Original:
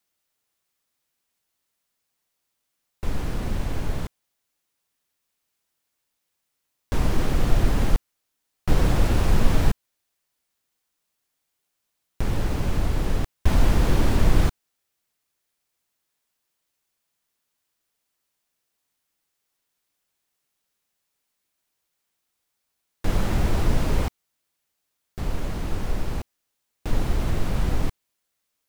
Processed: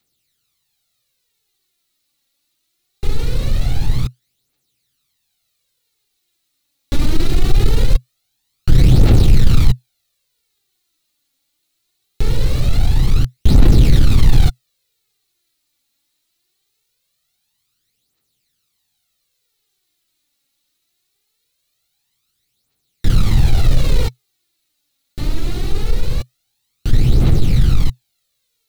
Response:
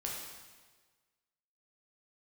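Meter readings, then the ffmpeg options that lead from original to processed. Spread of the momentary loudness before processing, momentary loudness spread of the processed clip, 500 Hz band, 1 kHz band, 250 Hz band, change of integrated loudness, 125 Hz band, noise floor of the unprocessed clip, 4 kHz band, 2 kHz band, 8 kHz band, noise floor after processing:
12 LU, 13 LU, +3.5 dB, -0.5 dB, +6.5 dB, +8.5 dB, +10.5 dB, -79 dBFS, +9.0 dB, +2.0 dB, +5.0 dB, -71 dBFS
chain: -af "equalizer=f=125:t=o:w=0.33:g=9,equalizer=f=630:t=o:w=0.33:g=-8,equalizer=f=1000:t=o:w=0.33:g=-10,equalizer=f=1600:t=o:w=0.33:g=-6,equalizer=f=4000:t=o:w=0.33:g=9,aphaser=in_gain=1:out_gain=1:delay=3.7:decay=0.59:speed=0.22:type=triangular,acontrast=67,volume=0.891"

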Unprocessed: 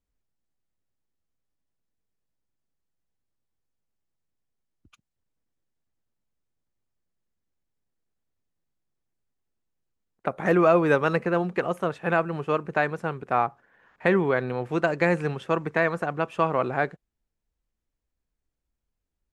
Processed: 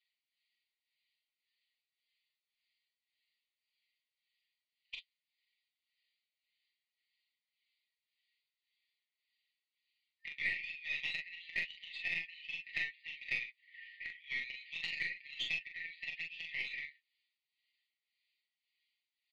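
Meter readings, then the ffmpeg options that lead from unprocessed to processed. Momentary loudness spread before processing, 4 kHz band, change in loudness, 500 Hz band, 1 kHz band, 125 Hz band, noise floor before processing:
8 LU, +2.0 dB, -14.5 dB, under -40 dB, under -40 dB, -34.5 dB, -83 dBFS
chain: -filter_complex "[0:a]afftfilt=real='re*between(b*sr/4096,1800,4900)':imag='im*between(b*sr/4096,1800,4900)':win_size=4096:overlap=0.75,aecho=1:1:5.7:0.9,acompressor=threshold=0.00447:ratio=12,flanger=delay=5.5:depth=10:regen=41:speed=0.14:shape=triangular,tremolo=f=1.8:d=0.71,aeval=exprs='0.0141*(cos(1*acos(clip(val(0)/0.0141,-1,1)))-cos(1*PI/2))+0.00447*(cos(2*acos(clip(val(0)/0.0141,-1,1)))-cos(2*PI/2))+0.00158*(cos(4*acos(clip(val(0)/0.0141,-1,1)))-cos(4*PI/2))+0.000708*(cos(6*acos(clip(val(0)/0.0141,-1,1)))-cos(6*PI/2))':c=same,asplit=2[s0][s1];[s1]aecho=0:1:30|42:0.355|0.562[s2];[s0][s2]amix=inputs=2:normalize=0,volume=6.31"

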